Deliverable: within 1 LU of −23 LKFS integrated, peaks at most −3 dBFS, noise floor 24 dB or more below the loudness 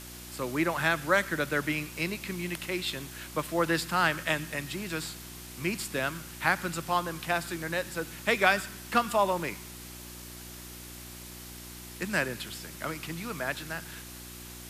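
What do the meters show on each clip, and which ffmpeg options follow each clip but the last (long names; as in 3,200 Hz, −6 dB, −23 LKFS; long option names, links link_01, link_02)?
mains hum 60 Hz; hum harmonics up to 360 Hz; level of the hum −45 dBFS; background noise floor −45 dBFS; target noise floor −54 dBFS; integrated loudness −30.0 LKFS; sample peak −8.5 dBFS; target loudness −23.0 LKFS
→ -af "bandreject=frequency=60:width_type=h:width=4,bandreject=frequency=120:width_type=h:width=4,bandreject=frequency=180:width_type=h:width=4,bandreject=frequency=240:width_type=h:width=4,bandreject=frequency=300:width_type=h:width=4,bandreject=frequency=360:width_type=h:width=4"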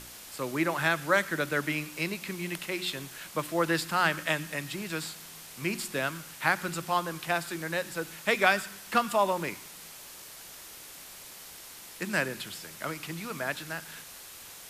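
mains hum none found; background noise floor −47 dBFS; target noise floor −55 dBFS
→ -af "afftdn=noise_reduction=8:noise_floor=-47"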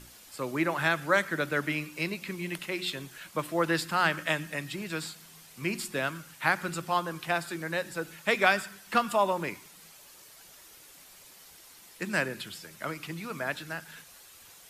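background noise floor −53 dBFS; target noise floor −55 dBFS
→ -af "afftdn=noise_reduction=6:noise_floor=-53"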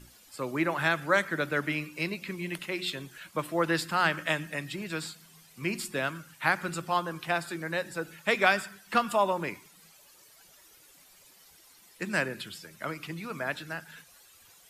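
background noise floor −58 dBFS; integrated loudness −30.5 LKFS; sample peak −9.0 dBFS; target loudness −23.0 LKFS
→ -af "volume=7.5dB,alimiter=limit=-3dB:level=0:latency=1"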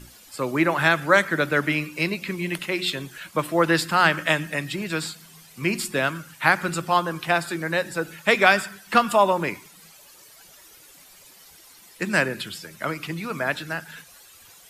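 integrated loudness −23.0 LKFS; sample peak −3.0 dBFS; background noise floor −50 dBFS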